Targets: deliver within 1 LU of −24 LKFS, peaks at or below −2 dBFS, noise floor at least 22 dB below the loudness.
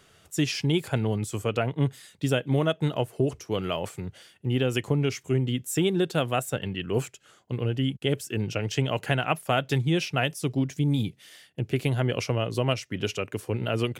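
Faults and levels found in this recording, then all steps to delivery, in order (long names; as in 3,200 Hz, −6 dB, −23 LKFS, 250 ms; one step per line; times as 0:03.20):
integrated loudness −27.5 LKFS; sample peak −9.0 dBFS; target loudness −24.0 LKFS
→ level +3.5 dB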